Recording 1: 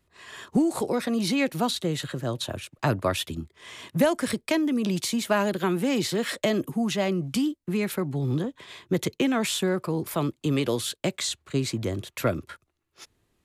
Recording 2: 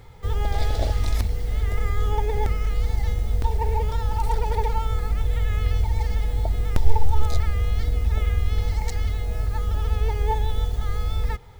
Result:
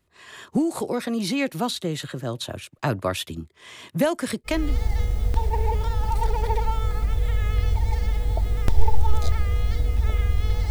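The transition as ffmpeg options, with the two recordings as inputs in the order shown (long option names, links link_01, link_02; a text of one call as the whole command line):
ffmpeg -i cue0.wav -i cue1.wav -filter_complex "[0:a]apad=whole_dur=10.7,atrim=end=10.7,atrim=end=4.78,asetpts=PTS-STARTPTS[link_01];[1:a]atrim=start=2.52:end=8.78,asetpts=PTS-STARTPTS[link_02];[link_01][link_02]acrossfade=duration=0.34:curve1=qsin:curve2=qsin" out.wav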